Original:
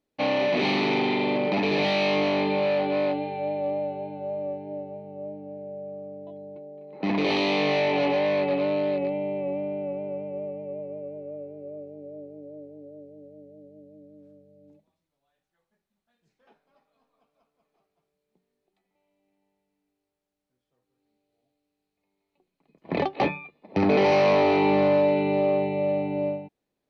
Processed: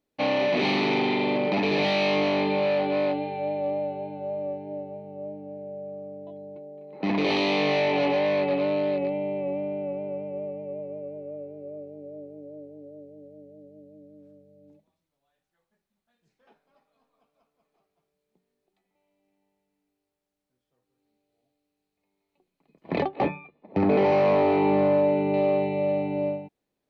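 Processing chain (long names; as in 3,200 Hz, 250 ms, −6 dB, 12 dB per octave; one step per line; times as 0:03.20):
0:23.02–0:25.34: low-pass filter 1,400 Hz 6 dB per octave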